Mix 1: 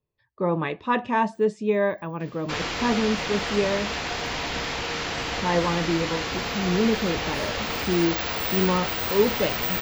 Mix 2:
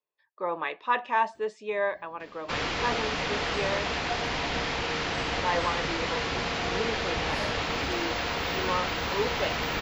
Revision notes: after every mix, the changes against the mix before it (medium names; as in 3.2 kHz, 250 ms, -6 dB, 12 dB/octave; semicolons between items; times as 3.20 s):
speech: add high-pass 680 Hz 12 dB/octave; second sound +6.5 dB; master: add distance through air 72 m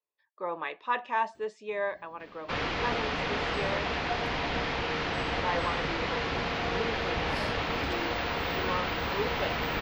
speech -3.5 dB; first sound: add distance through air 140 m